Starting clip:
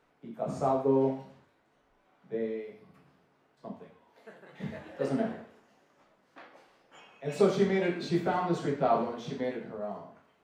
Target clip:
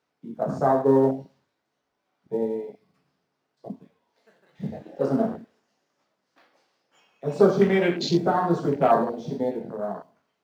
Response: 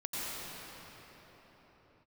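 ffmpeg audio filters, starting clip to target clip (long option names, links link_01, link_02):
-filter_complex "[0:a]highpass=78,equalizer=frequency=5200:width_type=o:width=1.1:gain=10.5,asplit=2[link_01][link_02];[link_02]acrusher=bits=3:mode=log:mix=0:aa=0.000001,volume=-5dB[link_03];[link_01][link_03]amix=inputs=2:normalize=0,afwtdn=0.0224,volume=3dB"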